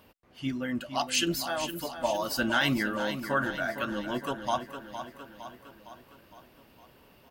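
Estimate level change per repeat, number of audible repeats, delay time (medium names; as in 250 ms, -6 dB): -5.0 dB, 5, 460 ms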